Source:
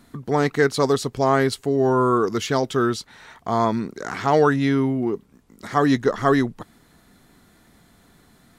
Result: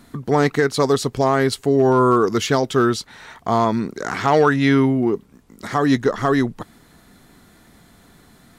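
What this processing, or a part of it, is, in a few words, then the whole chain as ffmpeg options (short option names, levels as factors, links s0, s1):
limiter into clipper: -filter_complex "[0:a]alimiter=limit=0.299:level=0:latency=1:release=265,asoftclip=type=hard:threshold=0.266,asettb=1/sr,asplit=3[s0][s1][s2];[s0]atrim=end=4.244[s3];[s1]atrim=start=4.24:end=4.86,asetpts=PTS-STARTPTS,afade=t=in:d=0.004:c=qsin,afade=t=out:st=0.616:d=0.004:c=qsin,equalizer=f=2200:t=o:w=2.1:g=4[s4];[s2]atrim=start=4.856[s5];[s3][s4]acrossfade=d=0.004:c1=hsin:c2=qsin[s6];[s6][s5]acrossfade=d=0.004:c1=qsin:c2=hsin,volume=1.68"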